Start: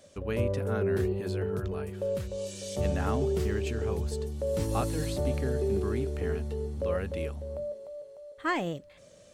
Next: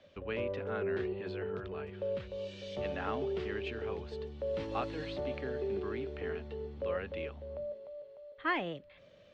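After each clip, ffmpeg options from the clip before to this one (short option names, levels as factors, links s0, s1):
-filter_complex "[0:a]lowpass=f=3300:w=0.5412,lowpass=f=3300:w=1.3066,highshelf=f=2100:g=9,acrossover=split=250|410|1700[s0][s1][s2][s3];[s0]acompressor=threshold=0.00794:ratio=4[s4];[s4][s1][s2][s3]amix=inputs=4:normalize=0,volume=0.562"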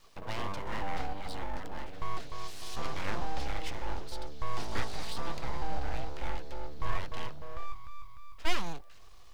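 -af "aexciter=amount=4:drive=7:freq=4300,aeval=exprs='abs(val(0))':c=same,asubboost=boost=3:cutoff=100,volume=1.33"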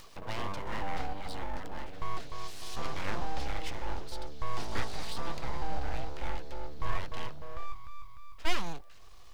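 -af "acompressor=mode=upward:threshold=0.00708:ratio=2.5"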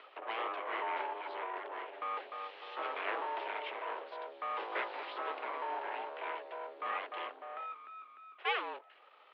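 -af "highpass=f=260:t=q:w=0.5412,highpass=f=260:t=q:w=1.307,lowpass=f=3000:t=q:w=0.5176,lowpass=f=3000:t=q:w=0.7071,lowpass=f=3000:t=q:w=1.932,afreqshift=120,volume=1.19"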